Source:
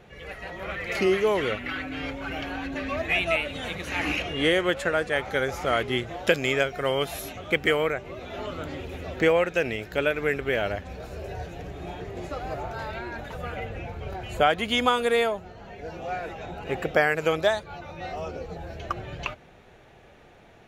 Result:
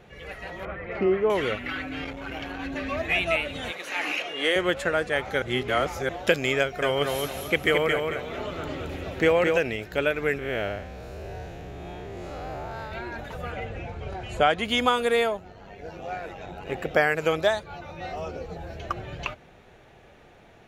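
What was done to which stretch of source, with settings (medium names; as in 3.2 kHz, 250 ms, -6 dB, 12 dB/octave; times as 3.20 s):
0.65–1.30 s: low-pass 1.4 kHz
2.04–2.60 s: transformer saturation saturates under 400 Hz
3.71–4.56 s: high-pass 450 Hz
5.42–6.09 s: reverse
6.60–9.58 s: feedback delay 221 ms, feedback 30%, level -4 dB
10.38–12.92 s: spectral blur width 146 ms
13.51–14.65 s: low-pass 10 kHz 24 dB/octave
15.37–16.91 s: AM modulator 95 Hz, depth 30%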